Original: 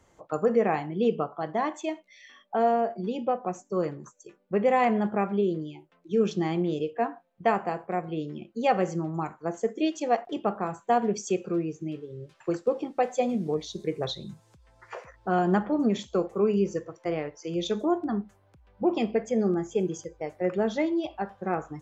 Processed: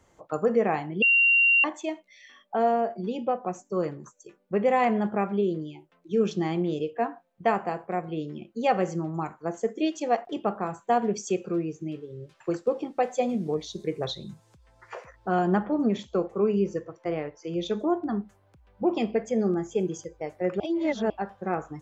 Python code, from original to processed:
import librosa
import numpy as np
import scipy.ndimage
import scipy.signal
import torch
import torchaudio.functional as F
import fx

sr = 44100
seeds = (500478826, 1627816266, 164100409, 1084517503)

y = fx.lowpass(x, sr, hz=3500.0, slope=6, at=(15.47, 18.07))
y = fx.edit(y, sr, fx.bleep(start_s=1.02, length_s=0.62, hz=2760.0, db=-16.5),
    fx.reverse_span(start_s=20.6, length_s=0.5), tone=tone)